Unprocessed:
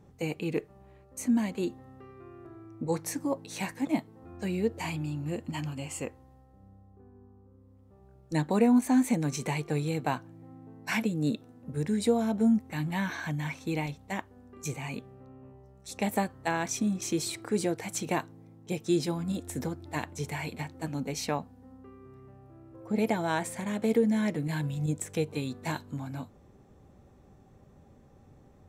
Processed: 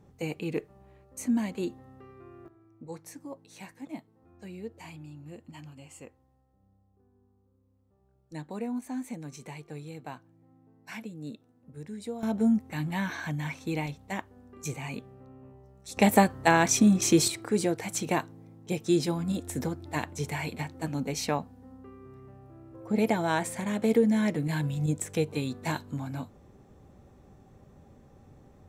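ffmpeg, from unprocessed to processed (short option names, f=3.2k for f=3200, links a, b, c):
-af "asetnsamples=n=441:p=0,asendcmd='2.48 volume volume -11.5dB;12.23 volume volume 0dB;15.97 volume volume 8.5dB;17.28 volume volume 2dB',volume=-1dB"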